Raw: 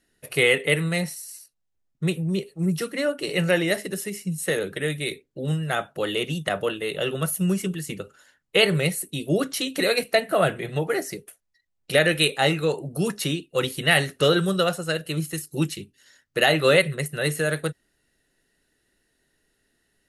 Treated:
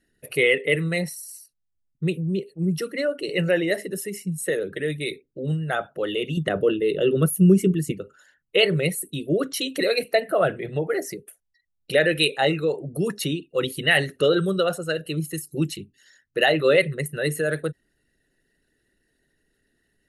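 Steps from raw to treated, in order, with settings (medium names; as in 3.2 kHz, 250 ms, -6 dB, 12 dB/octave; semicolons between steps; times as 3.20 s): resonances exaggerated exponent 1.5; 6.37–7.92 s: resonant low shelf 510 Hz +7 dB, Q 1.5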